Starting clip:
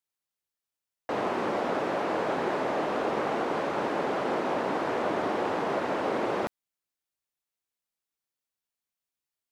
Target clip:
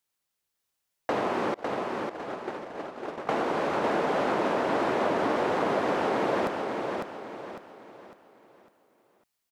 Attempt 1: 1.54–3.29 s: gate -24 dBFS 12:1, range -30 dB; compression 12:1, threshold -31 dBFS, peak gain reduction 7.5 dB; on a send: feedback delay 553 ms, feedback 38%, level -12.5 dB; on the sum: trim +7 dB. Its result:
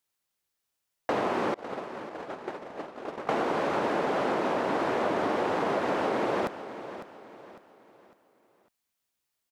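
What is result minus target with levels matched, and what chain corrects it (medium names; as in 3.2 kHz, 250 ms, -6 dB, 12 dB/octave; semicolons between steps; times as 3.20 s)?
echo-to-direct -8.5 dB
1.54–3.29 s: gate -24 dBFS 12:1, range -30 dB; compression 12:1, threshold -31 dBFS, peak gain reduction 7.5 dB; on a send: feedback delay 553 ms, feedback 38%, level -4 dB; on the sum: trim +7 dB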